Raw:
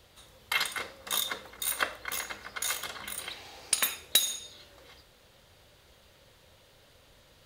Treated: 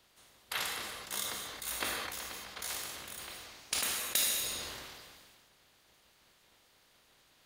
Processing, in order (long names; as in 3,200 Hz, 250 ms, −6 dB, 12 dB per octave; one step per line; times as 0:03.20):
ceiling on every frequency bin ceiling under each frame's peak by 16 dB
reverb whose tail is shaped and stops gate 260 ms flat, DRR 4.5 dB
level that may fall only so fast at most 29 dB per second
level −8.5 dB